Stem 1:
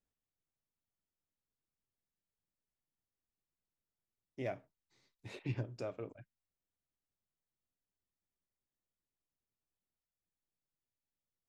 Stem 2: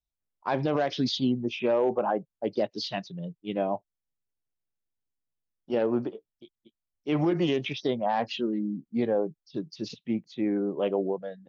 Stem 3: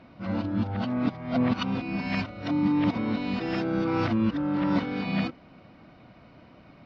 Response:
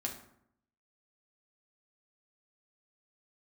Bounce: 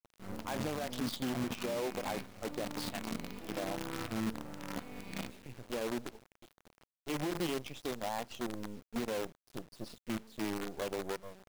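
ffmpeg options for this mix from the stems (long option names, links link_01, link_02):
-filter_complex "[0:a]acompressor=threshold=-51dB:ratio=2,volume=0dB,asplit=2[link_01][link_02];[link_02]volume=-15.5dB[link_03];[1:a]adynamicequalizer=threshold=0.00631:dfrequency=1500:dqfactor=1.6:tfrequency=1500:tqfactor=1.6:attack=5:release=100:ratio=0.375:range=1.5:mode=cutabove:tftype=bell,volume=-6.5dB,asplit=3[link_04][link_05][link_06];[link_05]volume=-18dB[link_07];[2:a]volume=-13dB,asplit=2[link_08][link_09];[link_09]volume=-7.5dB[link_10];[link_06]apad=whole_len=506378[link_11];[link_01][link_11]sidechaincompress=threshold=-53dB:ratio=6:attack=41:release=730[link_12];[3:a]atrim=start_sample=2205[link_13];[link_03][link_07][link_10]amix=inputs=3:normalize=0[link_14];[link_14][link_13]afir=irnorm=-1:irlink=0[link_15];[link_12][link_04][link_08][link_15]amix=inputs=4:normalize=0,acrusher=bits=6:dc=4:mix=0:aa=0.000001,alimiter=level_in=4.5dB:limit=-24dB:level=0:latency=1:release=255,volume=-4.5dB"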